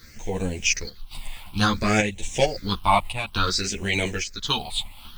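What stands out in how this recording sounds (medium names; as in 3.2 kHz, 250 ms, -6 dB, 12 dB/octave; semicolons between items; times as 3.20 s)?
a quantiser's noise floor 8-bit, dither none; phasing stages 6, 0.57 Hz, lowest notch 410–1300 Hz; chopped level 0.9 Hz, depth 60%, duty 80%; a shimmering, thickened sound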